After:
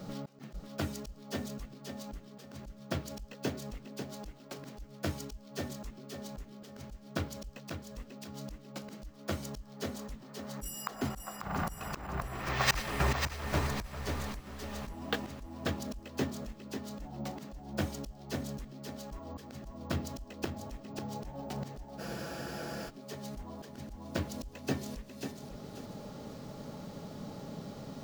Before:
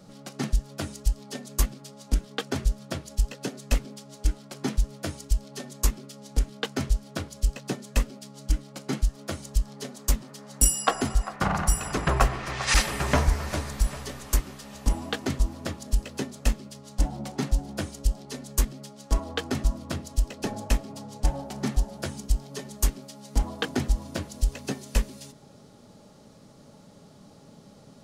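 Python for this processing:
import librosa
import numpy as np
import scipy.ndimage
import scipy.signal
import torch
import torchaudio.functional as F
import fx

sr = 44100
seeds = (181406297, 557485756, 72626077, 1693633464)

p1 = fx.high_shelf(x, sr, hz=6900.0, db=-9.5)
p2 = fx.auto_swell(p1, sr, attack_ms=748.0)
p3 = p2 + fx.echo_feedback(p2, sr, ms=543, feedback_pct=26, wet_db=-7, dry=0)
p4 = np.repeat(p3[::2], 2)[:len(p3)]
p5 = fx.spec_freeze(p4, sr, seeds[0], at_s=22.02, hold_s=0.86)
y = p5 * 10.0 ** (6.5 / 20.0)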